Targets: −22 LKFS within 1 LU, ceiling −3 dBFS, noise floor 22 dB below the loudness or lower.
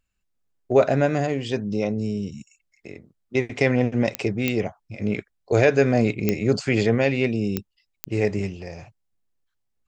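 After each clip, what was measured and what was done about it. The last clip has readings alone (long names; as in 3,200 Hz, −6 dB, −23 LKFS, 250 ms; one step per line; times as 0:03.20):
number of clicks 5; integrated loudness −23.0 LKFS; sample peak −5.0 dBFS; target loudness −22.0 LKFS
→ click removal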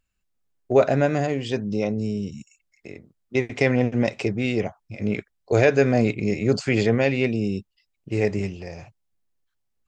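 number of clicks 0; integrated loudness −23.0 LKFS; sample peak −5.0 dBFS; target loudness −22.0 LKFS
→ level +1 dB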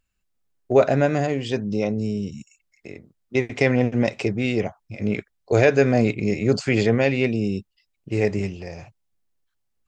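integrated loudness −22.0 LKFS; sample peak −4.0 dBFS; background noise floor −74 dBFS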